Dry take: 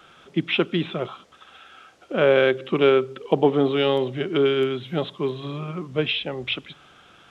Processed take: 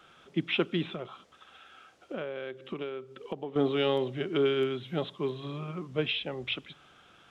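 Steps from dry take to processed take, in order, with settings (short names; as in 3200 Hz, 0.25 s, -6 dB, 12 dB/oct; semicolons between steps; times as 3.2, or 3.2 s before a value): 0.85–3.56 compressor 12:1, threshold -27 dBFS, peak gain reduction 15.5 dB; gain -6.5 dB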